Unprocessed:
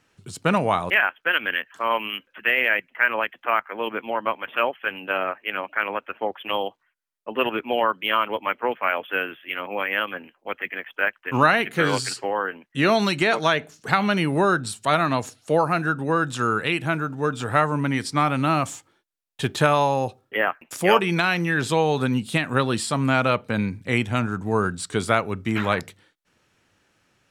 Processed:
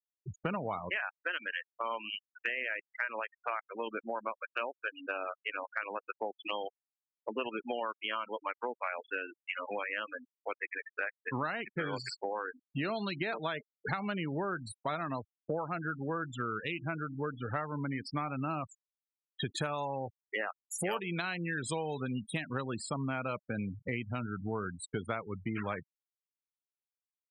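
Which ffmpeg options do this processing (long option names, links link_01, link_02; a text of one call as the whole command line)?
ffmpeg -i in.wav -filter_complex "[0:a]asettb=1/sr,asplit=3[link_01][link_02][link_03];[link_01]atrim=end=19.464[link_04];[link_02]atrim=start=19.46:end=22.54,asetpts=PTS-STARTPTS,afade=type=in:duration=0.004:curve=qsin,afade=type=out:start_time=3.076:duration=0.004:curve=qsin,highshelf=frequency=6900:gain=12[link_05];[link_03]atrim=start=22.536[link_06];[link_04][link_05]acrossfade=duration=0.004:curve1=hsin:curve2=qsin[link_07];[link_07][link_06]acrossfade=duration=0.004:curve1=qsin:curve2=hsin,afftfilt=real='re*gte(hypot(re,im),0.0708)':imag='im*gte(hypot(re,im),0.0708)':win_size=1024:overlap=0.75,acompressor=threshold=-35dB:ratio=4" out.wav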